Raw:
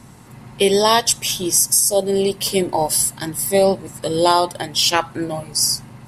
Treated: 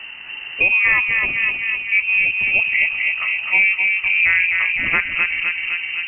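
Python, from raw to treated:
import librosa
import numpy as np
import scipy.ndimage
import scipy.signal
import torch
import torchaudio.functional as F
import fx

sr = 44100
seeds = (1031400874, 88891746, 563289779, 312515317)

p1 = fx.air_absorb(x, sr, metres=230.0)
p2 = p1 + fx.echo_filtered(p1, sr, ms=256, feedback_pct=72, hz=1700.0, wet_db=-4.0, dry=0)
p3 = fx.freq_invert(p2, sr, carrier_hz=2900)
y = fx.band_squash(p3, sr, depth_pct=40)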